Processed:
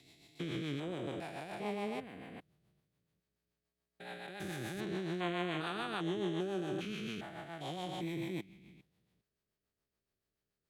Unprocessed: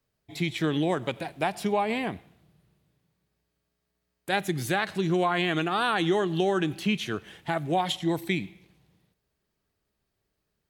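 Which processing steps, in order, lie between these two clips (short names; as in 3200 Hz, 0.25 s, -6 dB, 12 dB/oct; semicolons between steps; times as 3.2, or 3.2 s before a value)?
stepped spectrum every 0.4 s; rotary speaker horn 7 Hz; low shelf 190 Hz -4 dB; gain -5 dB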